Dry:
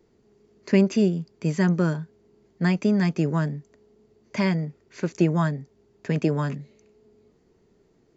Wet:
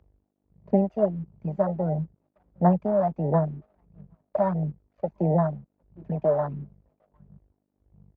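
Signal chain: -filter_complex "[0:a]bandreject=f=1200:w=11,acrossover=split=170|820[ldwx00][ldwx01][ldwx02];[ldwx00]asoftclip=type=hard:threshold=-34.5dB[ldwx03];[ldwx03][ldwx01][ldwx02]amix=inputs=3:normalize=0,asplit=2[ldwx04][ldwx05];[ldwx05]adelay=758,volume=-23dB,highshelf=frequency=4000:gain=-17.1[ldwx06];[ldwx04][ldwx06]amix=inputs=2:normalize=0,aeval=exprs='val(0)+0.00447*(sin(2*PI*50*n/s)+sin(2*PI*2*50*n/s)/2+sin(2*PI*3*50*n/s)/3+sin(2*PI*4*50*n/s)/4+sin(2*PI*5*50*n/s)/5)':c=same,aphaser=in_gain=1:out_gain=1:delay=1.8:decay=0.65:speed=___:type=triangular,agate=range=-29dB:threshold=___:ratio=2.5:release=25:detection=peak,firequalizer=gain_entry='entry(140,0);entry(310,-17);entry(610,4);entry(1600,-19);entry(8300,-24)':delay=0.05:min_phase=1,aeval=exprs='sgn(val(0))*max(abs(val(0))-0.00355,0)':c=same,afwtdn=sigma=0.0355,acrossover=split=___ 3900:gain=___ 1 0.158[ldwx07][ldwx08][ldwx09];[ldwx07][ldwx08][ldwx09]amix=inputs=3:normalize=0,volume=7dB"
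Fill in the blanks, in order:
1.5, -41dB, 200, 0.0891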